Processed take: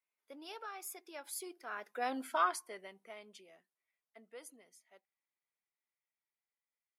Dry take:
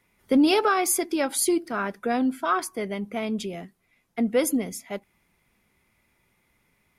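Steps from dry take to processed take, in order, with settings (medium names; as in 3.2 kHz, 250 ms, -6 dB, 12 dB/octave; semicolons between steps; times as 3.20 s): Doppler pass-by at 2.26 s, 14 m/s, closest 2.5 m; high-pass 570 Hz 12 dB/octave; trim -3.5 dB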